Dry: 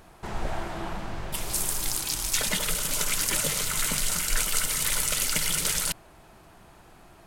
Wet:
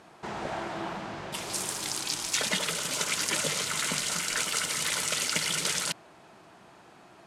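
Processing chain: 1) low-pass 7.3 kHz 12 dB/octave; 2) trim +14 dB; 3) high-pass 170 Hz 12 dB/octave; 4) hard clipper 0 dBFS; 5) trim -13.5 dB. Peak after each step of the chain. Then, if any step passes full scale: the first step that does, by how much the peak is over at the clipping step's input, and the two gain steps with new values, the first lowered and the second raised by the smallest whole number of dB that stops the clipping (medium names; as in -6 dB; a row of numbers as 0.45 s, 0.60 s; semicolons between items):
-10.0 dBFS, +4.0 dBFS, +3.0 dBFS, 0.0 dBFS, -13.5 dBFS; step 2, 3.0 dB; step 2 +11 dB, step 5 -10.5 dB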